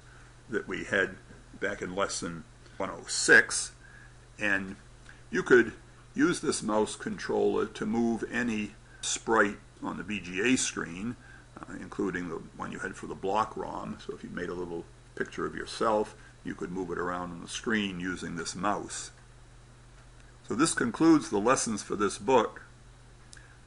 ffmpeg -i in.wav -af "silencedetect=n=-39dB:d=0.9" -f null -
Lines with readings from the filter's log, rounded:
silence_start: 19.08
silence_end: 20.20 | silence_duration: 1.12